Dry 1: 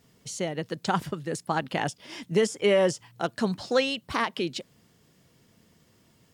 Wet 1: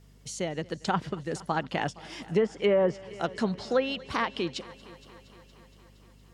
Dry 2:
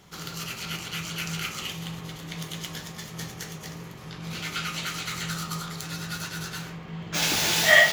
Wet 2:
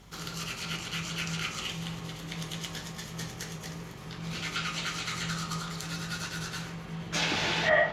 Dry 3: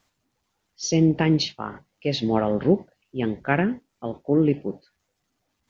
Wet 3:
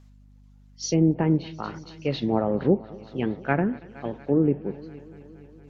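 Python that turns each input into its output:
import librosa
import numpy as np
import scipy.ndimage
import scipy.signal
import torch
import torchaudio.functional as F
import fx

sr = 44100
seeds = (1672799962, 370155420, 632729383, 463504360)

y = fx.add_hum(x, sr, base_hz=50, snr_db=26)
y = fx.echo_heads(y, sr, ms=233, heads='first and second', feedback_pct=61, wet_db=-23.5)
y = fx.env_lowpass_down(y, sr, base_hz=1200.0, full_db=-16.5)
y = y * librosa.db_to_amplitude(-1.5)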